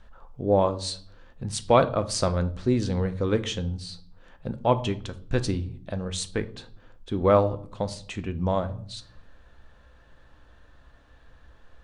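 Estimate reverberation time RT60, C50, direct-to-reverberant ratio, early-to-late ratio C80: 0.55 s, 17.0 dB, 10.0 dB, 21.0 dB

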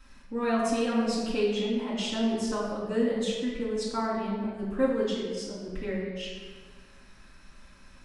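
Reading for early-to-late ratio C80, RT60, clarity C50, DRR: 2.5 dB, 1.6 s, 0.5 dB, -8.5 dB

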